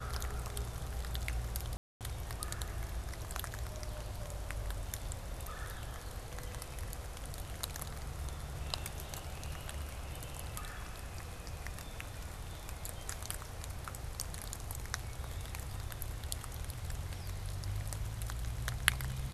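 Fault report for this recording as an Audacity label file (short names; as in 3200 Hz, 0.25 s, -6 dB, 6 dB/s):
1.770000	2.010000	gap 0.238 s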